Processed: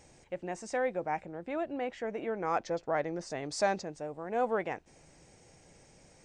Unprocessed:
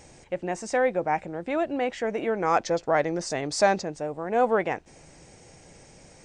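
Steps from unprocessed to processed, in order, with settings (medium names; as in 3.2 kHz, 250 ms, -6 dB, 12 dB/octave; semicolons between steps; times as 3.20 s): 1.22–3.41 s: treble shelf 4.3 kHz -7 dB; trim -8 dB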